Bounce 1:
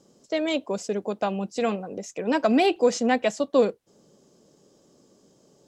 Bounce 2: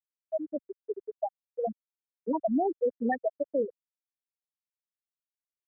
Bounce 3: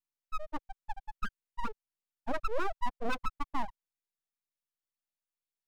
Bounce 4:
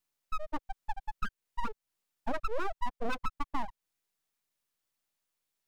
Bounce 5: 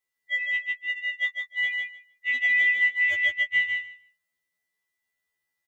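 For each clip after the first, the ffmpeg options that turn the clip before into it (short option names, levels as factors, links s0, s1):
-filter_complex "[0:a]afftfilt=real='re*gte(hypot(re,im),0.501)':imag='im*gte(hypot(re,im),0.501)':win_size=1024:overlap=0.75,equalizer=f=1700:t=o:w=1.4:g=13.5,acrossover=split=110|4000[s0][s1][s2];[s1]alimiter=limit=0.168:level=0:latency=1:release=180[s3];[s0][s3][s2]amix=inputs=3:normalize=0,volume=0.596"
-af "aeval=exprs='abs(val(0))':c=same,volume=0.841"
-af "acompressor=threshold=0.00891:ratio=2.5,volume=2.82"
-filter_complex "[0:a]afftfilt=real='real(if(lt(b,920),b+92*(1-2*mod(floor(b/92),2)),b),0)':imag='imag(if(lt(b,920),b+92*(1-2*mod(floor(b/92),2)),b),0)':win_size=2048:overlap=0.75,asplit=2[s0][s1];[s1]aecho=0:1:153|306|459:0.631|0.0946|0.0142[s2];[s0][s2]amix=inputs=2:normalize=0,afftfilt=real='re*2*eq(mod(b,4),0)':imag='im*2*eq(mod(b,4),0)':win_size=2048:overlap=0.75"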